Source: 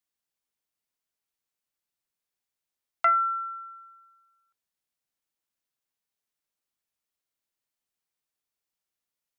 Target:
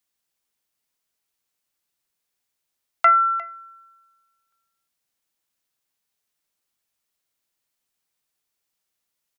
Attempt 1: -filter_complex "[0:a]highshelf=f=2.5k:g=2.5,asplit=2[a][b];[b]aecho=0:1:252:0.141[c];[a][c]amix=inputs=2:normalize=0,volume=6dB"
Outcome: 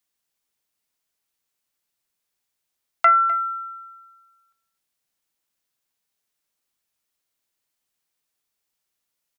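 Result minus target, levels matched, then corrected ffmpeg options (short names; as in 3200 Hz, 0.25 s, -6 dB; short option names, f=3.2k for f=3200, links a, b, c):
echo 0.101 s early
-filter_complex "[0:a]highshelf=f=2.5k:g=2.5,asplit=2[a][b];[b]aecho=0:1:353:0.141[c];[a][c]amix=inputs=2:normalize=0,volume=6dB"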